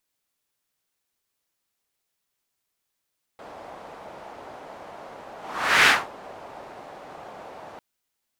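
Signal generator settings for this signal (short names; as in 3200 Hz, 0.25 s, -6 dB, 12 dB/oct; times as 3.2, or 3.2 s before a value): whoosh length 4.40 s, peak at 2.48, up 0.53 s, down 0.24 s, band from 720 Hz, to 2000 Hz, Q 1.8, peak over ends 26.5 dB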